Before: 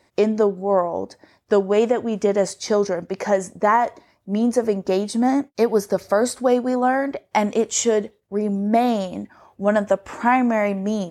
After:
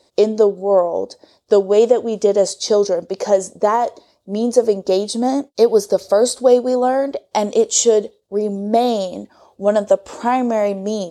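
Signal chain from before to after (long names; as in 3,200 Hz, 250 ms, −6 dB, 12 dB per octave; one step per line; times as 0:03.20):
octave-band graphic EQ 125/500/2,000/4,000/8,000 Hz −4/+9/−9/+11/+6 dB
level −1.5 dB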